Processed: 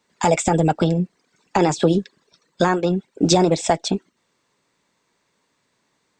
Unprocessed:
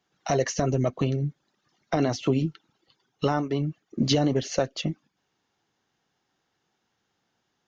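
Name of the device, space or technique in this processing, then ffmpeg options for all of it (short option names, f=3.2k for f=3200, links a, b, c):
nightcore: -af "asetrate=54684,aresample=44100,volume=7dB"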